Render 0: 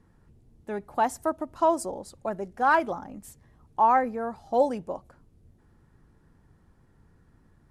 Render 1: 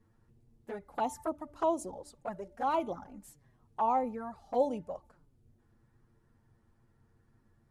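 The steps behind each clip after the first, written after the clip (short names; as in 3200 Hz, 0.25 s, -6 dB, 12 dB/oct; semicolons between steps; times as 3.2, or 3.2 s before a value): de-hum 295.8 Hz, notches 7; envelope flanger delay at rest 9.4 ms, full sweep at -22 dBFS; gain -4.5 dB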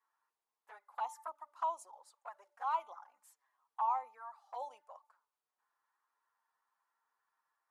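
ladder high-pass 880 Hz, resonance 55%; gain +1 dB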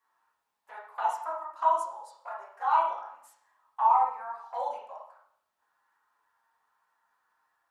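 reverb RT60 0.65 s, pre-delay 8 ms, DRR -4 dB; gain +5 dB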